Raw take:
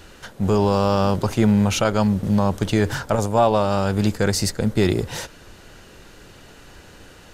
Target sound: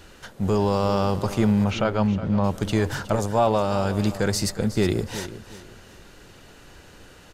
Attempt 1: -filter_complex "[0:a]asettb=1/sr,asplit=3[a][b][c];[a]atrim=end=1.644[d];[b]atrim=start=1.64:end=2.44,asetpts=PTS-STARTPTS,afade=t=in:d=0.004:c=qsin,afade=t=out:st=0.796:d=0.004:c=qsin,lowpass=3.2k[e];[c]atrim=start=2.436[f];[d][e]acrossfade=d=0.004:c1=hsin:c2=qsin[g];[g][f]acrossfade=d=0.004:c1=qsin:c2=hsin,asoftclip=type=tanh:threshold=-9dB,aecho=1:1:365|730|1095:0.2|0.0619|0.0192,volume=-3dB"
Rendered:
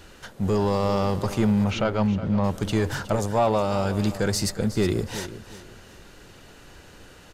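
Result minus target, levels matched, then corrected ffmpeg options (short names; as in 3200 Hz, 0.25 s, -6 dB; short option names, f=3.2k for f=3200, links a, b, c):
soft clip: distortion +14 dB
-filter_complex "[0:a]asettb=1/sr,asplit=3[a][b][c];[a]atrim=end=1.644[d];[b]atrim=start=1.64:end=2.44,asetpts=PTS-STARTPTS,afade=t=in:d=0.004:c=qsin,afade=t=out:st=0.796:d=0.004:c=qsin,lowpass=3.2k[e];[c]atrim=start=2.436[f];[d][e]acrossfade=d=0.004:c1=hsin:c2=qsin[g];[g][f]acrossfade=d=0.004:c1=qsin:c2=hsin,asoftclip=type=tanh:threshold=-1dB,aecho=1:1:365|730|1095:0.2|0.0619|0.0192,volume=-3dB"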